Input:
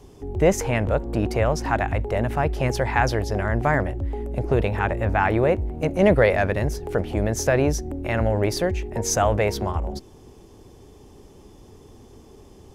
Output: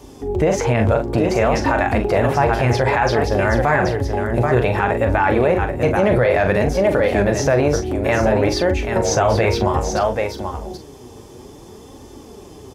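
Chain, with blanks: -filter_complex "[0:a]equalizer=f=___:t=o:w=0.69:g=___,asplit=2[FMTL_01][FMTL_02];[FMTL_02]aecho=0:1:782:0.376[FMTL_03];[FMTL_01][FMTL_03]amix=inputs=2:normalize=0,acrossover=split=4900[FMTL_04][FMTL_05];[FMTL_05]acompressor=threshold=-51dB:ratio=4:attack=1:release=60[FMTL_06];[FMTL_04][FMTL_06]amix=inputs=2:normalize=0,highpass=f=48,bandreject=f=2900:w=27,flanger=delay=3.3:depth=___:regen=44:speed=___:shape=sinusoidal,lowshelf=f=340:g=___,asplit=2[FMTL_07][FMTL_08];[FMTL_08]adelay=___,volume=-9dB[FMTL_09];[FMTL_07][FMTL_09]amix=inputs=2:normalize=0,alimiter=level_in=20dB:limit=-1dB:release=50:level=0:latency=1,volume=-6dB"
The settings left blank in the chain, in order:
2100, -2, 5.5, 0.58, -4, 41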